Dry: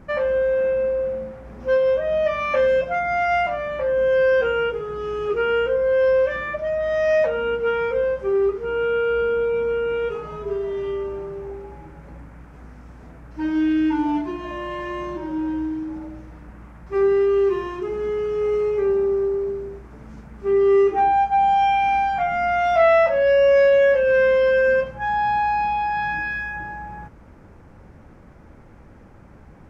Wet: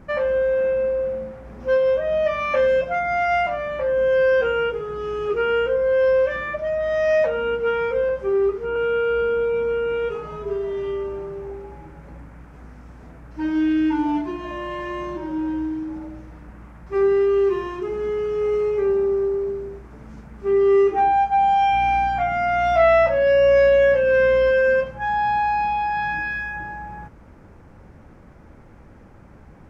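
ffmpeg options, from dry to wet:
ffmpeg -i in.wav -filter_complex "[0:a]asettb=1/sr,asplit=3[link_01][link_02][link_03];[link_01]atrim=end=8.094[link_04];[link_02]atrim=start=8.09:end=8.76,asetpts=PTS-STARTPTS,afade=type=in:duration=0.004:curve=qsin,afade=type=out:start_time=0.666:duration=0.004:curve=qsin,acrossover=split=2600[link_05][link_06];[link_06]acompressor=threshold=-52dB:ratio=4:attack=1:release=60[link_07];[link_05][link_07]amix=inputs=2:normalize=0[link_08];[link_03]atrim=start=8.756[link_09];[link_04][link_08]acrossfade=duration=0.004:curve1=hsin:curve2=qsin[link_10];[link_10][link_09]acrossfade=duration=0.004:curve1=qsin:curve2=hsin,asettb=1/sr,asplit=3[link_11][link_12][link_13];[link_11]atrim=end=21.724[link_14];[link_12]atrim=start=21.72:end=24.51,asetpts=PTS-STARTPTS,afade=type=in:duration=0.004:curve=qsin,afade=type=out:start_time=2.786:duration=0.004:curve=qsin,aeval=exprs='val(0)+0.0178*(sin(2*PI*60*n/s)+sin(2*PI*2*60*n/s)/2+sin(2*PI*3*60*n/s)/3+sin(2*PI*4*60*n/s)/4+sin(2*PI*5*60*n/s)/5)':channel_layout=same[link_15];[link_13]atrim=start=24.506[link_16];[link_14][link_15]acrossfade=duration=0.004:curve1=hsin:curve2=qsin[link_17];[link_17][link_16]acrossfade=duration=0.004:curve1=qsin:curve2=hsin" out.wav

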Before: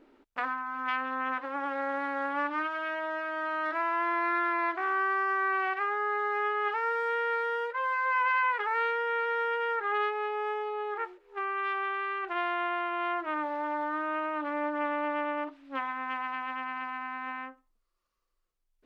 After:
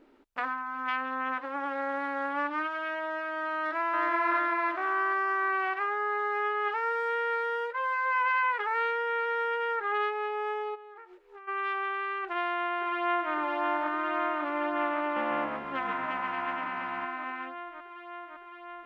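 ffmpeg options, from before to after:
ffmpeg -i in.wav -filter_complex "[0:a]asplit=2[link_01][link_02];[link_02]afade=type=in:start_time=3.56:duration=0.01,afade=type=out:start_time=4.02:duration=0.01,aecho=0:1:370|740|1110|1480|1850|2220|2590|2960:0.794328|0.436881|0.240284|0.132156|0.072686|0.0399773|0.0219875|0.0120931[link_03];[link_01][link_03]amix=inputs=2:normalize=0,asplit=3[link_04][link_05][link_06];[link_04]afade=type=out:start_time=10.74:duration=0.02[link_07];[link_05]acompressor=threshold=-43dB:ratio=16:attack=3.2:release=140:knee=1:detection=peak,afade=type=in:start_time=10.74:duration=0.02,afade=type=out:start_time=11.47:duration=0.02[link_08];[link_06]afade=type=in:start_time=11.47:duration=0.02[link_09];[link_07][link_08][link_09]amix=inputs=3:normalize=0,asplit=2[link_10][link_11];[link_11]afade=type=in:start_time=12.25:duration=0.01,afade=type=out:start_time=13.32:duration=0.01,aecho=0:1:560|1120|1680|2240|2800|3360|3920|4480|5040|5600|6160|6720:0.595662|0.506313|0.430366|0.365811|0.310939|0.264298|0.224654|0.190956|0.162312|0.137965|0.117271|0.09968[link_12];[link_10][link_12]amix=inputs=2:normalize=0,asettb=1/sr,asplit=3[link_13][link_14][link_15];[link_13]atrim=end=15.024[link_16];[link_14]atrim=start=15.02:end=17.05,asetpts=PTS-STARTPTS,afade=type=in:duration=0.004:curve=qsin,afade=type=out:start_time=2.026:duration=0.004:curve=qsin,asplit=5[link_17][link_18][link_19][link_20][link_21];[link_18]adelay=141,afreqshift=-71,volume=-7dB[link_22];[link_19]adelay=282,afreqshift=-142,volume=-16.9dB[link_23];[link_20]adelay=423,afreqshift=-213,volume=-26.8dB[link_24];[link_21]adelay=564,afreqshift=-284,volume=-36.7dB[link_25];[link_17][link_22][link_23][link_24][link_25]amix=inputs=5:normalize=0,atrim=end_sample=89523[link_26];[link_15]atrim=start=17.046[link_27];[link_16][link_26]acrossfade=duration=0.004:curve1=hsin:curve2=qsin[link_28];[link_28][link_27]acrossfade=duration=0.004:curve1=qsin:curve2=hsin" out.wav

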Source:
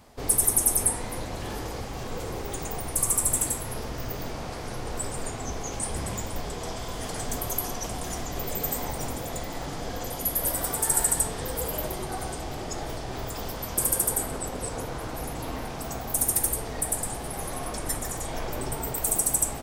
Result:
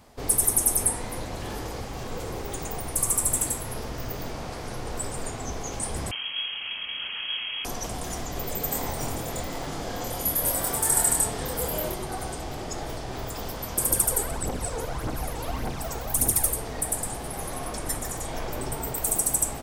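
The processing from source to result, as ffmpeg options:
ffmpeg -i in.wav -filter_complex "[0:a]asettb=1/sr,asplit=3[link_01][link_02][link_03];[link_01]atrim=end=6.114[link_04];[link_02]atrim=start=6.11:end=7.65,asetpts=PTS-STARTPTS,afade=type=in:duration=0.004:curve=qsin,afade=type=out:start_time=1.536:duration=0.004:curve=qsin,lowpass=frequency=2800:width_type=q:width=0.5098,lowpass=frequency=2800:width_type=q:width=0.6013,lowpass=frequency=2800:width_type=q:width=0.9,lowpass=frequency=2800:width_type=q:width=2.563,afreqshift=-3300[link_05];[link_03]atrim=start=7.646[link_06];[link_04][link_05]acrossfade=duration=0.004:curve1=hsin:curve2=qsin[link_07];[link_07][link_06]acrossfade=duration=0.004:curve1=qsin:curve2=hsin,asettb=1/sr,asplit=3[link_08][link_09][link_10];[link_08]atrim=end=8.694[link_11];[link_09]atrim=start=8.69:end=11.94,asetpts=PTS-STARTPTS,afade=type=in:duration=0.004:curve=qsin,afade=type=out:start_time=3.246:duration=0.004:curve=qsin,asplit=2[link_12][link_13];[link_13]adelay=26,volume=-3dB[link_14];[link_12][link_14]amix=inputs=2:normalize=0,atrim=end_sample=143325[link_15];[link_10]atrim=start=11.936[link_16];[link_11][link_15]acrossfade=duration=0.004:curve1=hsin:curve2=qsin[link_17];[link_17][link_16]acrossfade=duration=0.004:curve1=qsin:curve2=hsin,asettb=1/sr,asplit=3[link_18][link_19][link_20];[link_18]atrim=end=13.914[link_21];[link_19]atrim=start=13.91:end=16.51,asetpts=PTS-STARTPTS,afade=type=in:duration=0.004:curve=qsin,afade=type=out:start_time=2.596:duration=0.004:curve=qsin,aphaser=in_gain=1:out_gain=1:delay=2.4:decay=0.54:speed=1.7:type=triangular[link_22];[link_20]atrim=start=16.506[link_23];[link_21][link_22]acrossfade=duration=0.004:curve1=hsin:curve2=qsin[link_24];[link_24][link_23]acrossfade=duration=0.004:curve1=qsin:curve2=hsin" out.wav

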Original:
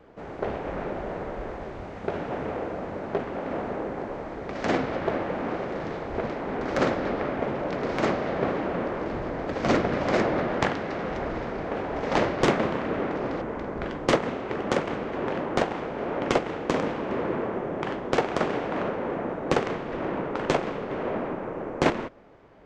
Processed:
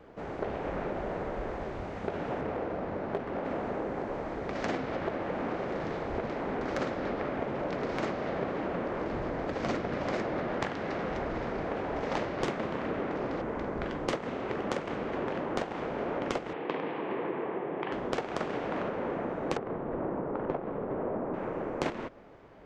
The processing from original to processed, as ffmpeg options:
ffmpeg -i in.wav -filter_complex "[0:a]asettb=1/sr,asplit=3[link_01][link_02][link_03];[link_01]atrim=end=2.414[link_04];[link_02]atrim=start=2.41:end=3.45,asetpts=PTS-STARTPTS,afade=type=in:duration=0.004:curve=qsin,afade=type=out:start_time=1.036:duration=0.004:curve=qsin,adynamicsmooth=sensitivity=7.5:basefreq=3200[link_05];[link_03]atrim=start=3.446[link_06];[link_04][link_05]acrossfade=duration=0.004:curve1=hsin:curve2=qsin[link_07];[link_07][link_06]acrossfade=duration=0.004:curve1=qsin:curve2=hsin,asettb=1/sr,asplit=3[link_08][link_09][link_10];[link_08]atrim=end=16.534[link_11];[link_09]atrim=start=16.53:end=17.92,asetpts=PTS-STARTPTS,afade=type=in:duration=0.004:curve=qsin,afade=type=out:start_time=1.386:duration=0.004:curve=qsin,highpass=200,equalizer=frequency=230:width_type=q:width=4:gain=-8,equalizer=frequency=590:width_type=q:width=4:gain=-6,equalizer=frequency=1400:width_type=q:width=4:gain=-6,lowpass=frequency=3300:width=0.5412,lowpass=frequency=3300:width=1.3066[link_12];[link_10]atrim=start=17.916[link_13];[link_11][link_12]acrossfade=duration=0.004:curve1=hsin:curve2=qsin[link_14];[link_14][link_13]acrossfade=duration=0.004:curve1=qsin:curve2=hsin,asettb=1/sr,asplit=3[link_15][link_16][link_17];[link_15]atrim=end=19.574[link_18];[link_16]atrim=start=19.57:end=21.34,asetpts=PTS-STARTPTS,afade=type=in:duration=0.004:curve=qsin,afade=type=out:start_time=1.766:duration=0.004:curve=qsin,lowpass=1100[link_19];[link_17]atrim=start=21.336[link_20];[link_18][link_19]acrossfade=duration=0.004:curve1=hsin:curve2=qsin[link_21];[link_21][link_20]acrossfade=duration=0.004:curve1=qsin:curve2=hsin,acompressor=threshold=-30dB:ratio=4" out.wav

